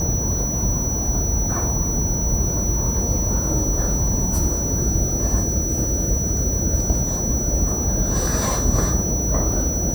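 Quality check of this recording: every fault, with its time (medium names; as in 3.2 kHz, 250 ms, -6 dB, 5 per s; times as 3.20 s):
whine 5.9 kHz -24 dBFS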